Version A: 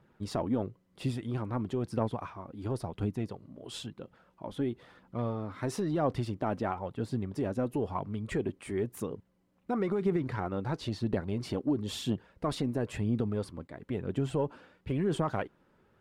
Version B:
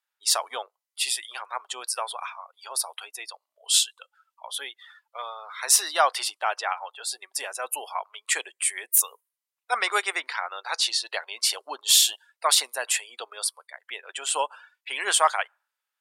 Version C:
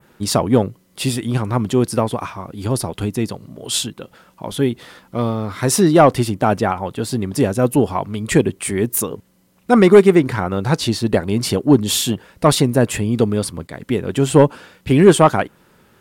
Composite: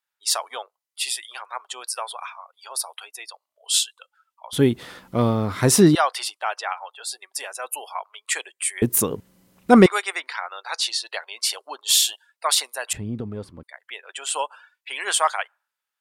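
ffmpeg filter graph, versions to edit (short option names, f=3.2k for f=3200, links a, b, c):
-filter_complex "[2:a]asplit=2[a][b];[1:a]asplit=4[c][d][e][f];[c]atrim=end=4.532[g];[a]atrim=start=4.528:end=5.952[h];[d]atrim=start=5.948:end=8.822[i];[b]atrim=start=8.818:end=9.862[j];[e]atrim=start=9.858:end=12.932[k];[0:a]atrim=start=12.928:end=13.632[l];[f]atrim=start=13.628[m];[g][h]acrossfade=d=0.004:c1=hsin:c2=hsin[n];[n][i]acrossfade=d=0.004:c1=hsin:c2=hsin[o];[o][j]acrossfade=d=0.004:c1=hsin:c2=hsin[p];[p][k]acrossfade=d=0.004:c1=hsin:c2=hsin[q];[q][l]acrossfade=d=0.004:c1=hsin:c2=hsin[r];[r][m]acrossfade=d=0.004:c1=hsin:c2=hsin"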